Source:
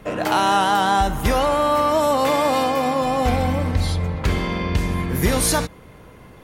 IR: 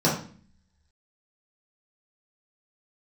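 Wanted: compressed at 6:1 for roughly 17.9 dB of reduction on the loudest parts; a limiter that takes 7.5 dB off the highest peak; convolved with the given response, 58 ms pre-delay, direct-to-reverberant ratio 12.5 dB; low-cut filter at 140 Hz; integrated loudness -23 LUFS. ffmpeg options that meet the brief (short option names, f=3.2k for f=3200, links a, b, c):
-filter_complex "[0:a]highpass=140,acompressor=threshold=-35dB:ratio=6,alimiter=level_in=6.5dB:limit=-24dB:level=0:latency=1,volume=-6.5dB,asplit=2[a][b];[1:a]atrim=start_sample=2205,adelay=58[c];[b][c]afir=irnorm=-1:irlink=0,volume=-28dB[d];[a][d]amix=inputs=2:normalize=0,volume=15.5dB"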